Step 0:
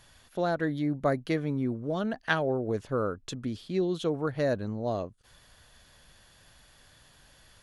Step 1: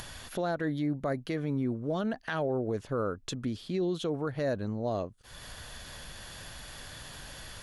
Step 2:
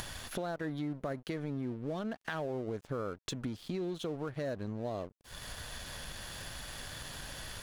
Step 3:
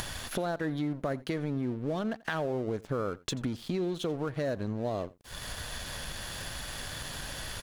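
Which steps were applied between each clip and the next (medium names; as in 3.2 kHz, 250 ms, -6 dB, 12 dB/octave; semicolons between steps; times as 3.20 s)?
upward compressor, threshold -32 dBFS; peak limiter -22.5 dBFS, peak gain reduction 11.5 dB
compression 3:1, threshold -39 dBFS, peak gain reduction 9.5 dB; crossover distortion -55.5 dBFS; trim +3.5 dB
delay 86 ms -22 dB; trim +5 dB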